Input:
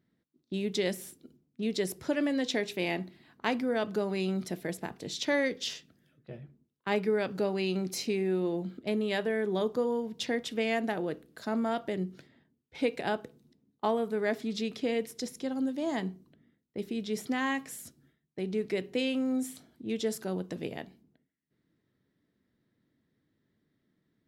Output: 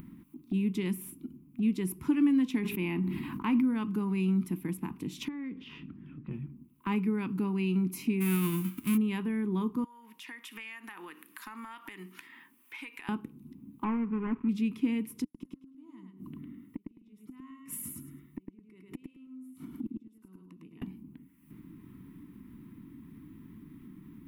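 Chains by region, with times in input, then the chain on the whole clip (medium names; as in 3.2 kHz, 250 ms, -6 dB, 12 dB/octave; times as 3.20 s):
2.59–3.64 s: dynamic bell 7 kHz, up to -7 dB, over -53 dBFS, Q 0.72 + decay stretcher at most 31 dB/s
5.28–6.31 s: compression 2:1, threshold -47 dBFS + distance through air 360 m
8.20–8.96 s: formants flattened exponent 0.3 + peaking EQ 850 Hz -14 dB 0.3 oct
9.84–13.09 s: high-pass 1.1 kHz + peaking EQ 1.8 kHz +8 dB 0.2 oct + compression 3:1, threshold -52 dBFS
13.84–14.49 s: dead-time distortion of 0.27 ms + low-pass 2 kHz 24 dB/octave
15.24–20.82 s: comb of notches 810 Hz + inverted gate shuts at -33 dBFS, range -42 dB + feedback delay 105 ms, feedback 15%, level -3.5 dB
whole clip: FFT filter 120 Hz 0 dB, 190 Hz +6 dB, 300 Hz +7 dB, 610 Hz -26 dB, 1 kHz +5 dB, 1.7 kHz -10 dB, 2.5 kHz +1 dB, 4.1 kHz -16 dB, 7.1 kHz -11 dB, 11 kHz +3 dB; upward compressor, threshold -30 dBFS; bass shelf 60 Hz +10.5 dB; trim -1.5 dB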